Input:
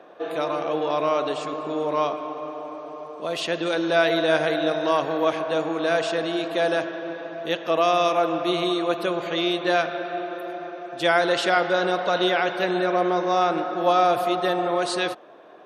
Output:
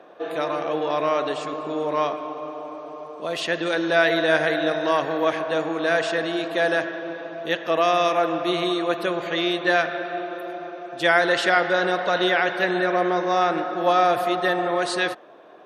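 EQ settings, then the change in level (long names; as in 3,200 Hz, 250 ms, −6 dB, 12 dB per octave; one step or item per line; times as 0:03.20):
dynamic equaliser 1,800 Hz, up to +8 dB, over −44 dBFS, Q 3.6
0.0 dB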